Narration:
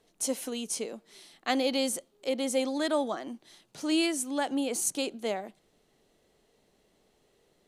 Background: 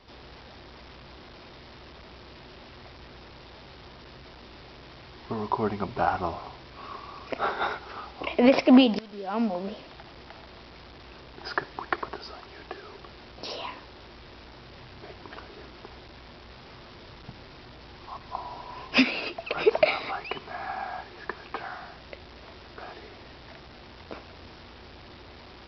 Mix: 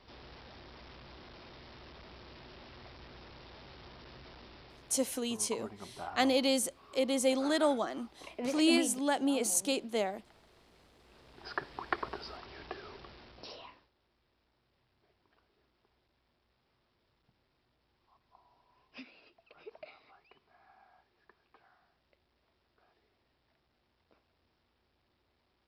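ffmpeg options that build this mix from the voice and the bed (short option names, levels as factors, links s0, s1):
-filter_complex "[0:a]adelay=4700,volume=0.944[s0];[1:a]volume=2.66,afade=t=out:st=4.36:d=0.88:silence=0.237137,afade=t=in:st=11.03:d=1.05:silence=0.211349,afade=t=out:st=12.86:d=1.04:silence=0.0562341[s1];[s0][s1]amix=inputs=2:normalize=0"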